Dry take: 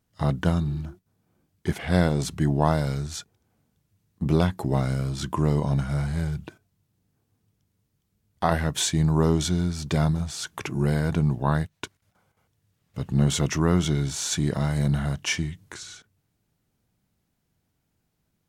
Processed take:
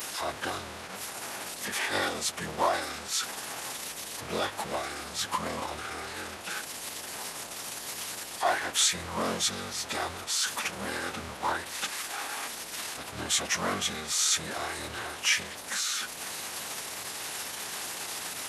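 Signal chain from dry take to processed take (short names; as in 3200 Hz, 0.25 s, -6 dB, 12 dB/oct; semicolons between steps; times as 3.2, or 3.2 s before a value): zero-crossing step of -25.5 dBFS; Bessel high-pass 810 Hz, order 2; formant-preserving pitch shift -10.5 st; gain +1 dB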